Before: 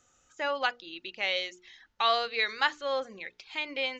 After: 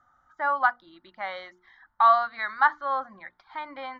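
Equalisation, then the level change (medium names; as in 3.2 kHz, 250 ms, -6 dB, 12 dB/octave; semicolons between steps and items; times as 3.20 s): distance through air 330 m; peaking EQ 1.1 kHz +12 dB 2.6 oct; static phaser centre 1.1 kHz, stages 4; 0.0 dB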